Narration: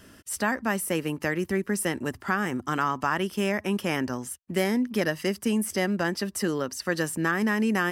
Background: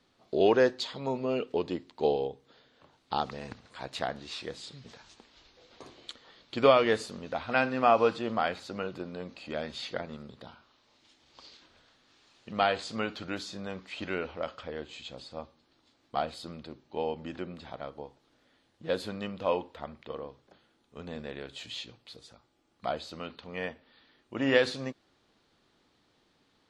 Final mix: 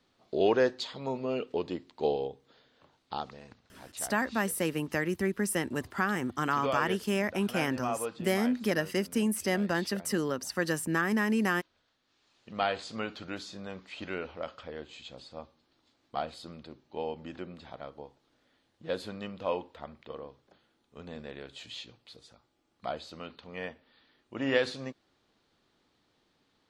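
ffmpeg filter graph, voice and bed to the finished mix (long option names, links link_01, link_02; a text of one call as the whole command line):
ffmpeg -i stem1.wav -i stem2.wav -filter_complex "[0:a]adelay=3700,volume=-3dB[link_01];[1:a]volume=6dB,afade=type=out:start_time=2.78:duration=0.74:silence=0.354813,afade=type=in:start_time=12.02:duration=0.66:silence=0.398107[link_02];[link_01][link_02]amix=inputs=2:normalize=0" out.wav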